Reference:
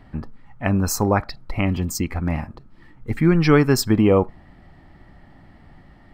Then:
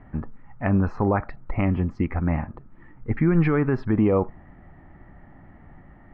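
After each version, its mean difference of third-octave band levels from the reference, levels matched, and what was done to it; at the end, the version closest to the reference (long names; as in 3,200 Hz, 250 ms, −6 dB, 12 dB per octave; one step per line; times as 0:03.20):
4.0 dB: low-pass filter 2,100 Hz 24 dB per octave
brickwall limiter −11 dBFS, peak gain reduction 9 dB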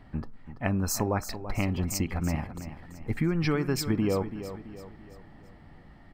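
6.5 dB: downward compressor, threshold −19 dBFS, peak gain reduction 10 dB
repeating echo 334 ms, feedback 45%, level −11.5 dB
level −4 dB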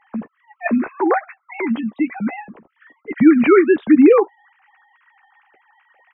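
10.5 dB: three sine waves on the formant tracks
double-tracking delay 13 ms −12 dB
level +3.5 dB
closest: first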